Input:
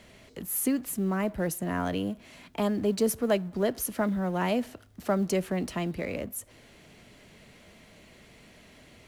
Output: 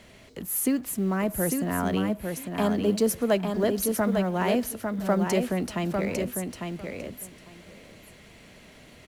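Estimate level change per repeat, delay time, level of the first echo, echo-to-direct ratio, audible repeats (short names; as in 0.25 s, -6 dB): -16.5 dB, 0.851 s, -5.0 dB, -5.0 dB, 2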